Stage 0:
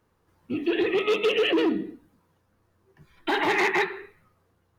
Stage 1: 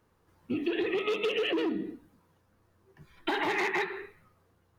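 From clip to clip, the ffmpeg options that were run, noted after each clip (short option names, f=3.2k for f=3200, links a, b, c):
-af "acompressor=threshold=-27dB:ratio=6"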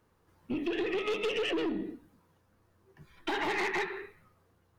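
-af "aeval=exprs='(tanh(17.8*val(0)+0.25)-tanh(0.25))/17.8':c=same"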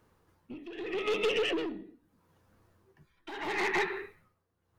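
-af "tremolo=f=0.78:d=0.84,volume=3dB"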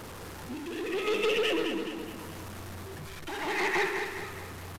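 -af "aeval=exprs='val(0)+0.5*0.0133*sgn(val(0))':c=same,aecho=1:1:210|420|630|840|1050:0.447|0.205|0.0945|0.0435|0.02,aresample=32000,aresample=44100"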